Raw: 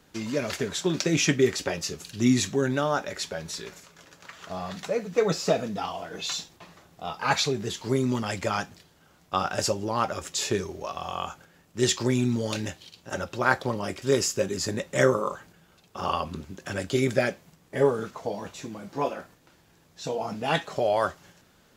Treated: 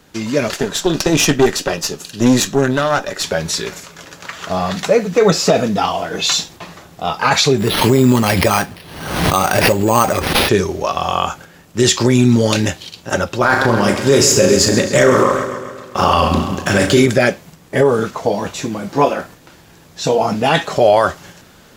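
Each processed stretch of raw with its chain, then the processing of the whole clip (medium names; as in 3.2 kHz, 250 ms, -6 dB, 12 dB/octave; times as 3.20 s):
0.48–3.24 s: high-pass 160 Hz + valve stage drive 21 dB, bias 0.8 + band-stop 2.2 kHz, Q 8.9
7.58–10.49 s: band-stop 1.4 kHz + careless resampling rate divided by 6×, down none, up hold + swell ahead of each attack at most 61 dB/s
13.41–17.06 s: flutter echo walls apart 6 m, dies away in 0.31 s + waveshaping leveller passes 1 + modulated delay 133 ms, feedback 56%, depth 60 cents, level -12 dB
whole clip: level rider gain up to 6 dB; loudness maximiser +10.5 dB; trim -1 dB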